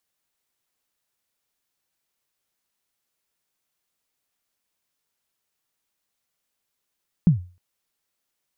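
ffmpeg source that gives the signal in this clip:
ffmpeg -f lavfi -i "aevalsrc='0.398*pow(10,-3*t/0.35)*sin(2*PI*(190*0.119/log(89/190)*(exp(log(89/190)*min(t,0.119)/0.119)-1)+89*max(t-0.119,0)))':duration=0.31:sample_rate=44100" out.wav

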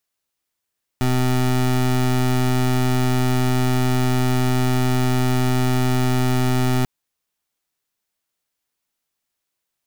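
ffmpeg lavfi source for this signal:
ffmpeg -f lavfi -i "aevalsrc='0.126*(2*lt(mod(127*t,1),0.24)-1)':duration=5.84:sample_rate=44100" out.wav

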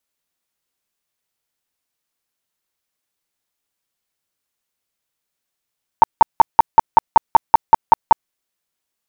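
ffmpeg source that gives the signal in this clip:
ffmpeg -f lavfi -i "aevalsrc='0.794*sin(2*PI*903*mod(t,0.19))*lt(mod(t,0.19),14/903)':duration=2.28:sample_rate=44100" out.wav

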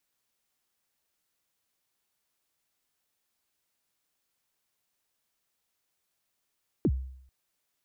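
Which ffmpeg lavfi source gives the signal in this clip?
ffmpeg -f lavfi -i "aevalsrc='0.112*pow(10,-3*t/0.68)*sin(2*PI*(410*0.056/log(65/410)*(exp(log(65/410)*min(t,0.056)/0.056)-1)+65*max(t-0.056,0)))':duration=0.44:sample_rate=44100" out.wav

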